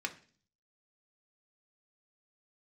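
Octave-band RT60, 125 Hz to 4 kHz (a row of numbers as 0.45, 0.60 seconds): 0.75, 0.65, 0.45, 0.40, 0.45, 0.50 seconds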